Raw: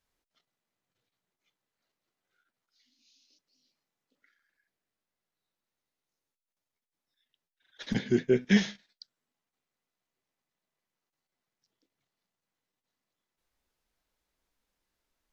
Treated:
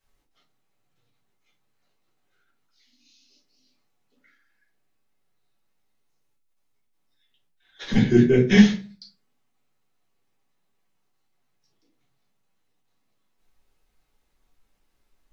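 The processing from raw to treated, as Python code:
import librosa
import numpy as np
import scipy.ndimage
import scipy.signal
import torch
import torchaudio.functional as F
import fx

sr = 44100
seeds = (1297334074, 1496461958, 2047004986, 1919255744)

y = fx.room_shoebox(x, sr, seeds[0], volume_m3=140.0, walls='furnished', distance_m=3.4)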